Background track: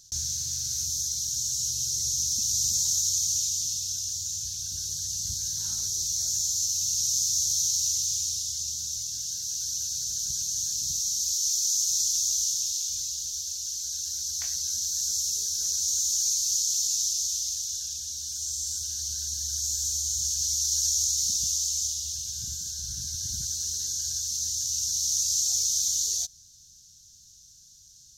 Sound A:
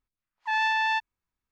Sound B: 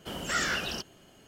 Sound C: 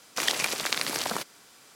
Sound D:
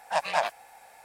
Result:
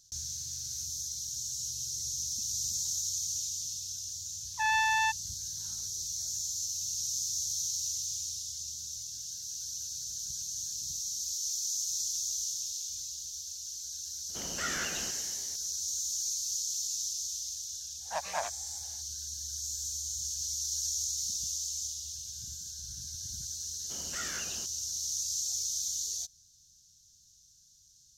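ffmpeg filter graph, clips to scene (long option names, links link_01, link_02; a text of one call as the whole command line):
ffmpeg -i bed.wav -i cue0.wav -i cue1.wav -i cue2.wav -i cue3.wav -filter_complex "[2:a]asplit=2[link_01][link_02];[0:a]volume=-8dB[link_03];[link_01]asplit=9[link_04][link_05][link_06][link_07][link_08][link_09][link_10][link_11][link_12];[link_05]adelay=117,afreqshift=57,volume=-11dB[link_13];[link_06]adelay=234,afreqshift=114,volume=-14.9dB[link_14];[link_07]adelay=351,afreqshift=171,volume=-18.8dB[link_15];[link_08]adelay=468,afreqshift=228,volume=-22.6dB[link_16];[link_09]adelay=585,afreqshift=285,volume=-26.5dB[link_17];[link_10]adelay=702,afreqshift=342,volume=-30.4dB[link_18];[link_11]adelay=819,afreqshift=399,volume=-34.3dB[link_19];[link_12]adelay=936,afreqshift=456,volume=-38.1dB[link_20];[link_04][link_13][link_14][link_15][link_16][link_17][link_18][link_19][link_20]amix=inputs=9:normalize=0[link_21];[4:a]equalizer=frequency=2700:width_type=o:width=0.27:gain=-6[link_22];[link_02]highshelf=frequency=5500:gain=9[link_23];[1:a]atrim=end=1.51,asetpts=PTS-STARTPTS,volume=-2.5dB,afade=type=in:duration=0.004:curve=hsin,afade=type=out:start_time=1.506:duration=0.004:curve=hsin,adelay=4120[link_24];[link_21]atrim=end=1.27,asetpts=PTS-STARTPTS,volume=-6.5dB,afade=type=in:duration=0.004:curve=hsin,afade=type=out:start_time=1.266:duration=0.004:curve=hsin,adelay=14290[link_25];[link_22]atrim=end=1.04,asetpts=PTS-STARTPTS,volume=-8.5dB,afade=type=in:duration=0.1,afade=type=out:start_time=0.94:duration=0.1,adelay=18000[link_26];[link_23]atrim=end=1.27,asetpts=PTS-STARTPTS,volume=-12.5dB,afade=type=in:duration=0.004:curve=hsin,afade=type=out:start_time=1.266:duration=0.004:curve=hsin,adelay=23840[link_27];[link_03][link_24][link_25][link_26][link_27]amix=inputs=5:normalize=0" out.wav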